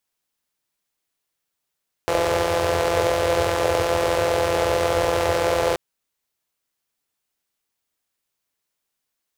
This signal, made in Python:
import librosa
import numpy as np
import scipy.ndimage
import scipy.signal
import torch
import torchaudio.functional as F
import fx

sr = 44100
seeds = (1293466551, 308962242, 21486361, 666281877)

y = fx.engine_four(sr, seeds[0], length_s=3.68, rpm=5100, resonances_hz=(89.0, 500.0))